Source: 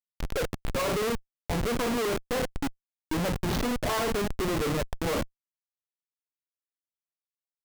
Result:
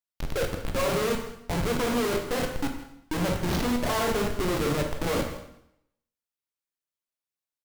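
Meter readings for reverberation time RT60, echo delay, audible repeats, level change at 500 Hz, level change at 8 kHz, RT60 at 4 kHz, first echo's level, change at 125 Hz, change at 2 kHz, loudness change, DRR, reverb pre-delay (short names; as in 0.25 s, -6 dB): 0.75 s, 0.162 s, 1, +2.0 dB, +1.5 dB, 0.75 s, -15.5 dB, +2.0 dB, +1.5 dB, +1.5 dB, 3.0 dB, 7 ms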